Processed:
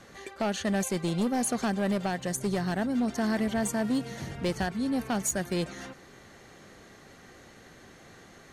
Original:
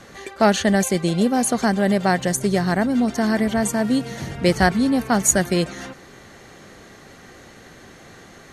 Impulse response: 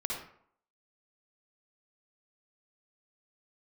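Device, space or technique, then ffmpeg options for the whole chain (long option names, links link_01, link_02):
limiter into clipper: -af "alimiter=limit=-9dB:level=0:latency=1:release=420,asoftclip=type=hard:threshold=-15dB,volume=-7.5dB"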